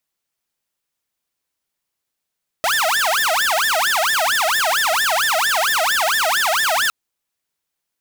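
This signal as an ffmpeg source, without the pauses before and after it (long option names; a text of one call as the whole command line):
ffmpeg -f lavfi -i "aevalsrc='0.224*(2*mod((1214*t-586/(2*PI*4.4)*sin(2*PI*4.4*t)),1)-1)':duration=4.26:sample_rate=44100" out.wav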